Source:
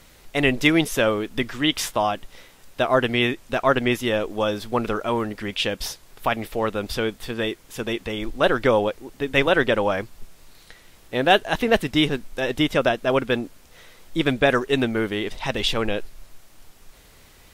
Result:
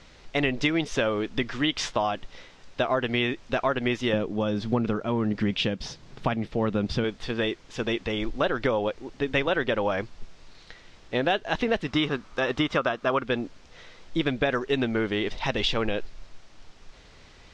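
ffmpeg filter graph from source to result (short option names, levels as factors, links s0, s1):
-filter_complex "[0:a]asettb=1/sr,asplit=3[s0][s1][s2];[s0]atrim=end=4.134[s3];[s1]atrim=start=4.13:end=7.04,asetpts=PTS-STARTPTS,afade=t=in:d=0.004:c=qsin,afade=t=out:st=2.906:d=0.004:c=qsin,equalizer=f=160:t=o:w=1.9:g=13.5,tremolo=f=1.5:d=0.55[s4];[s2]atrim=start=7.036[s5];[s3][s4]acrossfade=d=0.004:c1=hsin:c2=qsin[s6];[s6][s5]acrossfade=d=0.004:c1=qsin:c2=hsin,asettb=1/sr,asplit=3[s7][s8][s9];[s7]atrim=end=11.864[s10];[s8]atrim=start=11.86:end=13.23,asetpts=PTS-STARTPTS,afade=t=in:d=0.004:c=qsin,afade=t=out:st=1.366:d=0.004:c=qsin,highpass=f=54:p=1,equalizer=f=1200:w=2.5:g=11[s11];[s9]atrim=start=13.226[s12];[s10][s11]acrossfade=d=0.004:c1=hsin:c2=qsin[s13];[s13][s12]acrossfade=d=0.004:c1=qsin:c2=hsin,lowpass=f=6000:w=0.5412,lowpass=f=6000:w=1.3066,acompressor=threshold=0.0891:ratio=6"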